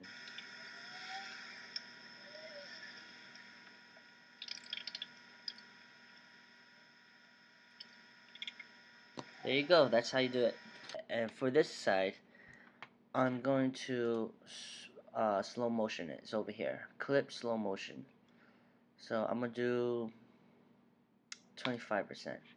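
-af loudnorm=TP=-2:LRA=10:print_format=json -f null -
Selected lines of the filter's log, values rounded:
"input_i" : "-38.1",
"input_tp" : "-14.5",
"input_lra" : "13.7",
"input_thresh" : "-50.0",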